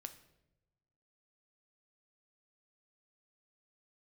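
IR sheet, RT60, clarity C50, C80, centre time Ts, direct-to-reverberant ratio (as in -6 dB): no single decay rate, 13.0 dB, 15.5 dB, 8 ms, 8.5 dB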